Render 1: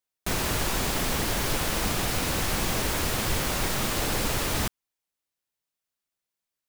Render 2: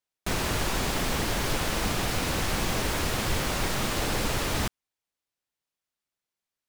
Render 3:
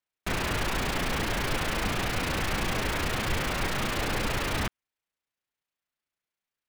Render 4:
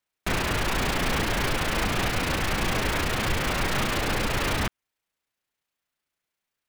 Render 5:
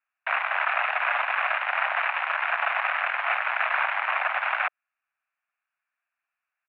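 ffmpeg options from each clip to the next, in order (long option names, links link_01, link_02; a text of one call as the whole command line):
ffmpeg -i in.wav -af "highshelf=frequency=9300:gain=-7.5" out.wav
ffmpeg -i in.wav -filter_complex "[0:a]acrossover=split=760|2700[link_01][link_02][link_03];[link_02]crystalizer=i=4.5:c=0[link_04];[link_03]tremolo=f=29:d=0.974[link_05];[link_01][link_04][link_05]amix=inputs=3:normalize=0,volume=-1.5dB" out.wav
ffmpeg -i in.wav -af "alimiter=limit=-20.5dB:level=0:latency=1:release=230,volume=5.5dB" out.wav
ffmpeg -i in.wav -af "aecho=1:1:0.9:0.49,aeval=exprs='0.266*(cos(1*acos(clip(val(0)/0.266,-1,1)))-cos(1*PI/2))+0.0841*(cos(7*acos(clip(val(0)/0.266,-1,1)))-cos(7*PI/2))':channel_layout=same,highpass=frequency=360:width_type=q:width=0.5412,highpass=frequency=360:width_type=q:width=1.307,lowpass=frequency=2100:width_type=q:width=0.5176,lowpass=frequency=2100:width_type=q:width=0.7071,lowpass=frequency=2100:width_type=q:width=1.932,afreqshift=340,volume=2.5dB" out.wav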